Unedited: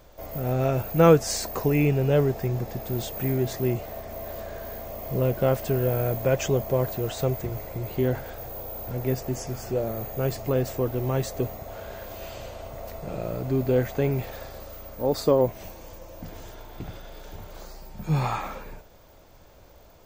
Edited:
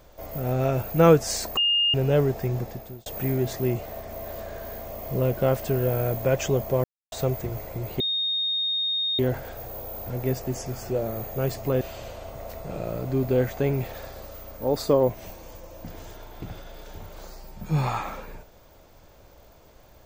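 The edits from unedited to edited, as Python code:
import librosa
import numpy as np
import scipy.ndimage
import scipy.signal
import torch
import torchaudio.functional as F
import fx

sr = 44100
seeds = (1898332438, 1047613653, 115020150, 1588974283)

y = fx.edit(x, sr, fx.bleep(start_s=1.57, length_s=0.37, hz=2830.0, db=-18.5),
    fx.fade_out_span(start_s=2.6, length_s=0.46),
    fx.silence(start_s=6.84, length_s=0.28),
    fx.insert_tone(at_s=8.0, length_s=1.19, hz=3700.0, db=-23.0),
    fx.cut(start_s=10.62, length_s=1.57), tone=tone)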